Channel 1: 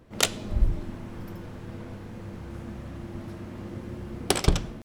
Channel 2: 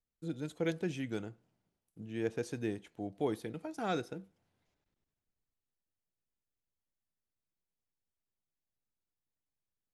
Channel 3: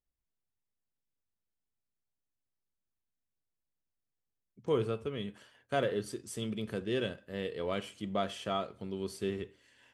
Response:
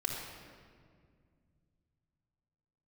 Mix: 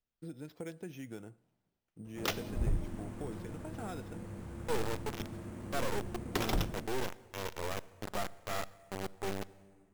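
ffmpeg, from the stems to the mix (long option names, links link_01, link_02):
-filter_complex "[0:a]adelay=2050,volume=-5.5dB[link_01];[1:a]acompressor=threshold=-43dB:ratio=3,volume=0dB[link_02];[2:a]highshelf=frequency=3800:gain=-6,acrusher=bits=3:dc=4:mix=0:aa=0.000001,volume=-0.5dB,asplit=2[link_03][link_04];[link_04]volume=-19dB[link_05];[3:a]atrim=start_sample=2205[link_06];[link_05][link_06]afir=irnorm=-1:irlink=0[link_07];[link_01][link_02][link_03][link_07]amix=inputs=4:normalize=0,highshelf=frequency=8900:gain=-10.5,acrusher=samples=5:mix=1:aa=0.000001,aeval=exprs='0.075*(abs(mod(val(0)/0.075+3,4)-2)-1)':channel_layout=same"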